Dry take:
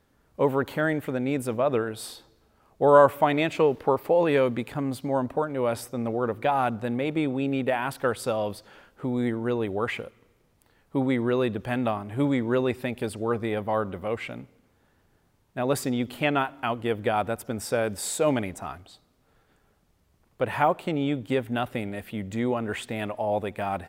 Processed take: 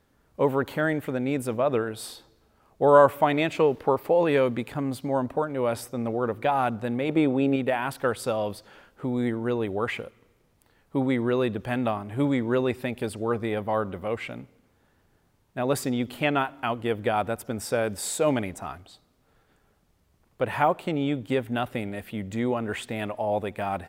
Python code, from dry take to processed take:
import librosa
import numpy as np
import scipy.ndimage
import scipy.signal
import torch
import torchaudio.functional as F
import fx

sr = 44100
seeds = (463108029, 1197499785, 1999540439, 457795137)

y = fx.peak_eq(x, sr, hz=540.0, db=5.5, octaves=2.8, at=(7.09, 7.56))